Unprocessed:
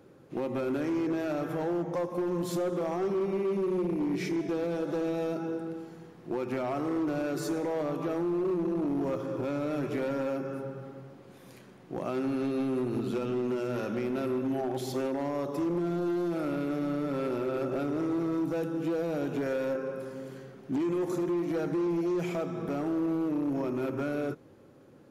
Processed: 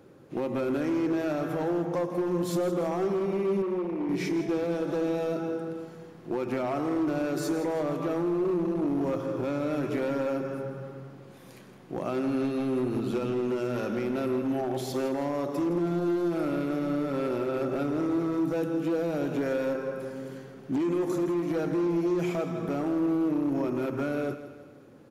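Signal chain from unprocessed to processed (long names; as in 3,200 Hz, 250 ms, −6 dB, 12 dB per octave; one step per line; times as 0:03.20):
0:03.62–0:04.09: bass and treble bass −10 dB, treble −14 dB
repeating echo 163 ms, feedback 49%, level −12.5 dB
level +2 dB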